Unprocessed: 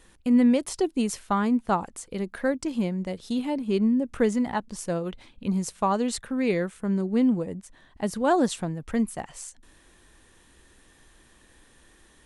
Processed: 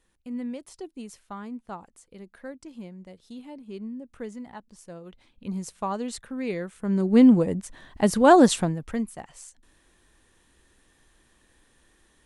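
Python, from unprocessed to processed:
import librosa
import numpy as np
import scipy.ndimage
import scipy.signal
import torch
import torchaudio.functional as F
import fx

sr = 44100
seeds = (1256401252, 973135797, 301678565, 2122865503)

y = fx.gain(x, sr, db=fx.line((4.96, -14.0), (5.54, -5.5), (6.65, -5.5), (7.19, 7.0), (8.58, 7.0), (9.07, -5.5)))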